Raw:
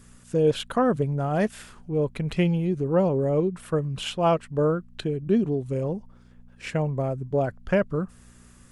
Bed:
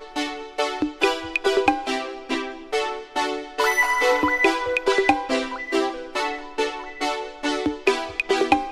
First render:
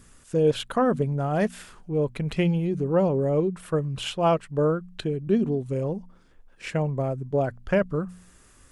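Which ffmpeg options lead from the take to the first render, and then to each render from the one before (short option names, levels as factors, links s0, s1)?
-af "bandreject=f=60:t=h:w=4,bandreject=f=120:t=h:w=4,bandreject=f=180:t=h:w=4,bandreject=f=240:t=h:w=4"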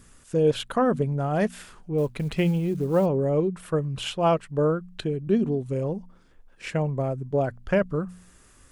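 -filter_complex "[0:a]asettb=1/sr,asplit=3[s0][s1][s2];[s0]atrim=end=1.984[s3];[s1]atrim=start=1.98:end=3.06,asetpts=PTS-STARTPTS,afade=t=in:d=0.004:c=qsin,afade=t=out:st=1.076:d=0.004:c=qsin,acrusher=bits=8:mode=log:mix=0:aa=0.000001[s4];[s2]atrim=start=3.056[s5];[s3][s4]acrossfade=d=0.004:c1=hsin:c2=qsin[s6];[s6][s5]acrossfade=d=0.004:c1=qsin:c2=hsin"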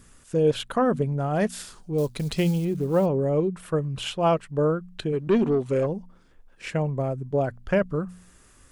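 -filter_complex "[0:a]asettb=1/sr,asplit=3[s0][s1][s2];[s0]atrim=end=1.494[s3];[s1]atrim=start=1.49:end=2.65,asetpts=PTS-STARTPTS,afade=t=in:d=0.004:c=qsin,afade=t=out:st=1.156:d=0.004:c=qsin,highshelf=f=3300:t=q:w=1.5:g=7.5[s4];[s2]atrim=start=2.646[s5];[s3][s4]acrossfade=d=0.004:c1=hsin:c2=qsin[s6];[s6][s5]acrossfade=d=0.004:c1=qsin:c2=hsin,asplit=3[s7][s8][s9];[s7]afade=t=out:st=5.12:d=0.02[s10];[s8]asplit=2[s11][s12];[s12]highpass=f=720:p=1,volume=7.94,asoftclip=type=tanh:threshold=0.266[s13];[s11][s13]amix=inputs=2:normalize=0,lowpass=f=3300:p=1,volume=0.501,afade=t=in:st=5.12:d=0.02,afade=t=out:st=5.85:d=0.02[s14];[s9]afade=t=in:st=5.85:d=0.02[s15];[s10][s14][s15]amix=inputs=3:normalize=0"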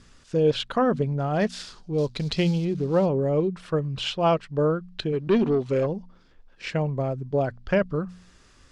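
-af "lowpass=f=4800:t=q:w=1.8"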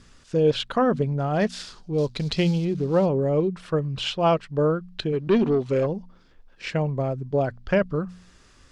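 -af "volume=1.12"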